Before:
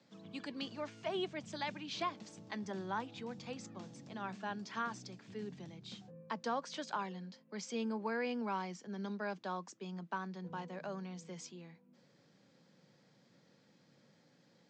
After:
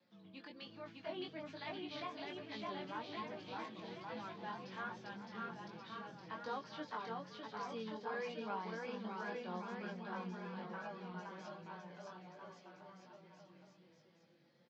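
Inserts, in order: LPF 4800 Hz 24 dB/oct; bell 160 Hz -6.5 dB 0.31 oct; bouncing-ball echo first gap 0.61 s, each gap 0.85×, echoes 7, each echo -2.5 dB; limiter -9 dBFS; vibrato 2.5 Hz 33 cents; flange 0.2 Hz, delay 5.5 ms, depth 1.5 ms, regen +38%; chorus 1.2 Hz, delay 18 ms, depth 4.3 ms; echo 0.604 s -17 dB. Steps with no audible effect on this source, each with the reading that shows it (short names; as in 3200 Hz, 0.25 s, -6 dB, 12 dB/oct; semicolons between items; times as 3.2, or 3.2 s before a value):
limiter -9 dBFS: input peak -23.0 dBFS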